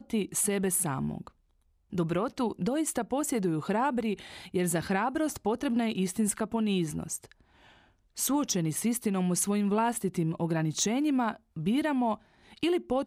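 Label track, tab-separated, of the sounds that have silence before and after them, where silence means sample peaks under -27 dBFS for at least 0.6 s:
1.980000	7.150000	sound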